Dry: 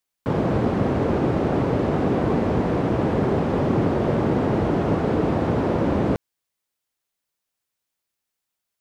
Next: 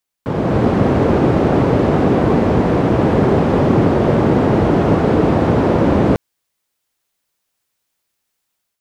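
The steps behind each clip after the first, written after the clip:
automatic gain control gain up to 7.5 dB
level +1.5 dB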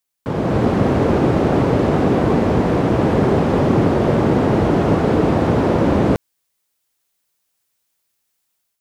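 high-shelf EQ 5,300 Hz +5.5 dB
level −2 dB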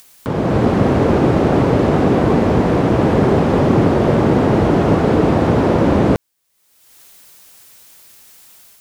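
upward compression, threshold −26 dBFS
level +2 dB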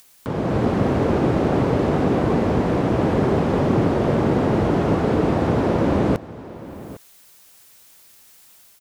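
single-tap delay 807 ms −17 dB
level −5.5 dB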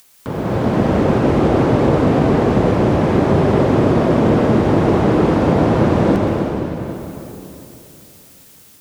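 convolution reverb RT60 3.0 s, pre-delay 116 ms, DRR −0.5 dB
level +1.5 dB

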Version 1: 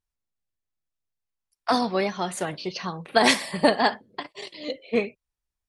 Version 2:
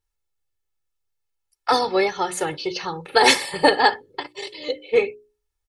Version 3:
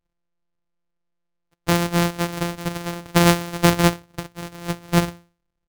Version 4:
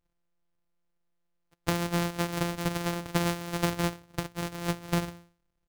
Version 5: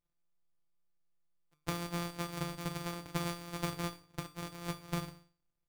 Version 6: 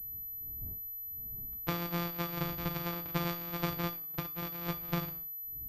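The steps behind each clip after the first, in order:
mains-hum notches 60/120/180/240/300/360/420 Hz; comb filter 2.3 ms, depth 86%; level +2.5 dB
samples sorted by size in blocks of 256 samples
downward compressor 8 to 1, threshold −25 dBFS, peak gain reduction 15 dB
tuned comb filter 150 Hz, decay 0.4 s, harmonics all, mix 80%; level +2 dB
wind on the microphone 100 Hz −57 dBFS; switching amplifier with a slow clock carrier 12,000 Hz; level +2.5 dB

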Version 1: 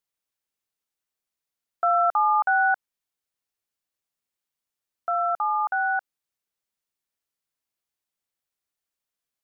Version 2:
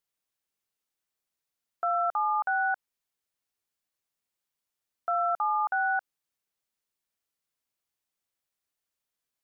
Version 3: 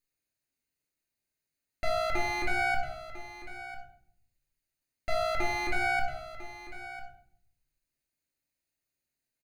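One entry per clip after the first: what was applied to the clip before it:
brickwall limiter −20.5 dBFS, peak gain reduction 6.5 dB
lower of the sound and its delayed copy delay 0.45 ms; single-tap delay 999 ms −14 dB; convolution reverb RT60 0.65 s, pre-delay 3 ms, DRR −1 dB; level −2 dB

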